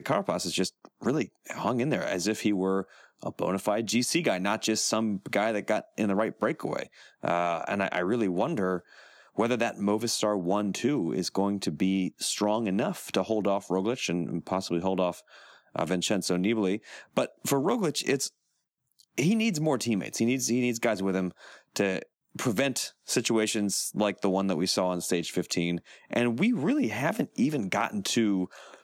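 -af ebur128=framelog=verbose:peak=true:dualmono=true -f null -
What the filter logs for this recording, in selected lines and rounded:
Integrated loudness:
  I:         -25.4 LUFS
  Threshold: -35.6 LUFS
Loudness range:
  LRA:         1.8 LU
  Threshold: -45.7 LUFS
  LRA low:   -26.7 LUFS
  LRA high:  -24.9 LUFS
True peak:
  Peak:      -12.5 dBFS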